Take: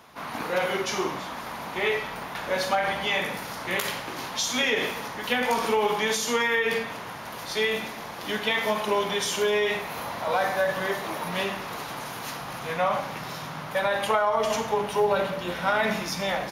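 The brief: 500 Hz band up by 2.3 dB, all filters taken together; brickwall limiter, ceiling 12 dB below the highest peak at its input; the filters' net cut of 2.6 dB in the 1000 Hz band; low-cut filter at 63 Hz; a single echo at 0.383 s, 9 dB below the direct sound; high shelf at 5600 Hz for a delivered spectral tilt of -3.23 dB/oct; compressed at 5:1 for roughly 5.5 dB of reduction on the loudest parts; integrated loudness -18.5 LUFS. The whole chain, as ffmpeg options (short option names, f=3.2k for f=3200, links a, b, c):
-af "highpass=63,equalizer=f=500:t=o:g=4,equalizer=f=1k:t=o:g=-5,highshelf=f=5.6k:g=7.5,acompressor=threshold=-24dB:ratio=5,alimiter=limit=-23.5dB:level=0:latency=1,aecho=1:1:383:0.355,volume=13dB"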